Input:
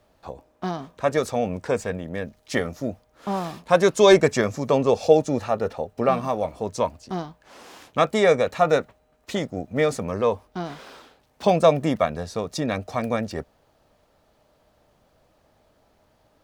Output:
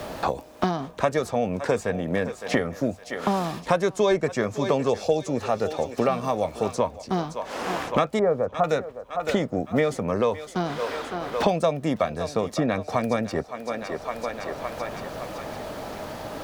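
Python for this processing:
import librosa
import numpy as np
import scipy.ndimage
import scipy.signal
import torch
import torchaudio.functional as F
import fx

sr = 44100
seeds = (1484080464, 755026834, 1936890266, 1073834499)

p1 = fx.lowpass(x, sr, hz=1300.0, slope=24, at=(8.19, 8.64))
p2 = p1 + fx.echo_thinned(p1, sr, ms=561, feedback_pct=44, hz=400.0, wet_db=-16.0, dry=0)
p3 = fx.band_squash(p2, sr, depth_pct=100)
y = F.gain(torch.from_numpy(p3), -2.0).numpy()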